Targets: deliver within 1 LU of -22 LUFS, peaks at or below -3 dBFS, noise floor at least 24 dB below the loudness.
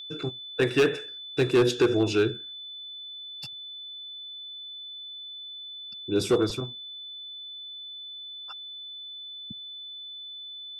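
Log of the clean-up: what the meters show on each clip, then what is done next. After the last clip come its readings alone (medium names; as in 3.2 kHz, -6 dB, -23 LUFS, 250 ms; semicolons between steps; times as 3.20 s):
clipped samples 0.5%; clipping level -15.0 dBFS; steady tone 3.5 kHz; tone level -38 dBFS; loudness -30.0 LUFS; peak level -15.0 dBFS; loudness target -22.0 LUFS
-> clip repair -15 dBFS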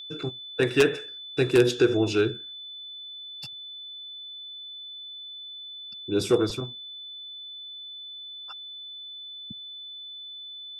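clipped samples 0.0%; steady tone 3.5 kHz; tone level -38 dBFS
-> band-stop 3.5 kHz, Q 30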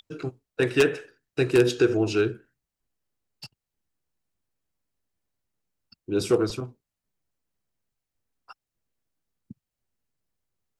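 steady tone not found; loudness -24.5 LUFS; peak level -6.0 dBFS; loudness target -22.0 LUFS
-> trim +2.5 dB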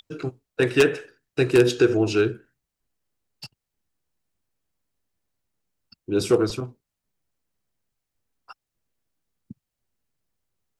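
loudness -22.0 LUFS; peak level -3.5 dBFS; noise floor -84 dBFS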